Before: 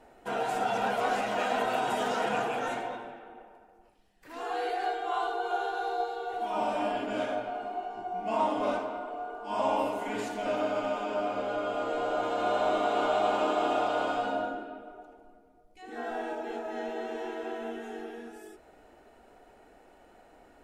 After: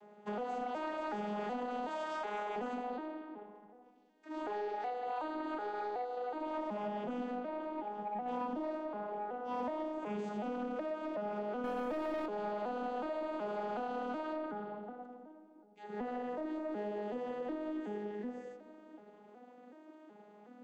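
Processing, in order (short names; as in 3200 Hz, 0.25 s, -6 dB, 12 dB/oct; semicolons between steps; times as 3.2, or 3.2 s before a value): arpeggiated vocoder minor triad, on G#3, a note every 0.372 s; 1.89–2.56 HPF 620 Hz 12 dB/oct; 11.64–12.26 sample leveller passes 2; compressor 6:1, threshold -35 dBFS, peak gain reduction 12 dB; soft clip -31.5 dBFS, distortion -20 dB; darkening echo 0.208 s, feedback 70%, low-pass 980 Hz, level -18.5 dB; gain +1 dB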